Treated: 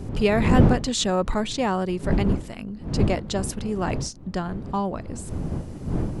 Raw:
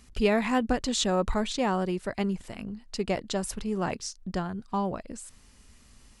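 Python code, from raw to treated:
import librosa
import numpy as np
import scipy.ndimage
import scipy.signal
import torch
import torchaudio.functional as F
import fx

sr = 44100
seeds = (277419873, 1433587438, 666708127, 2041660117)

y = fx.dmg_wind(x, sr, seeds[0], corner_hz=200.0, level_db=-29.0)
y = F.gain(torch.from_numpy(y), 3.0).numpy()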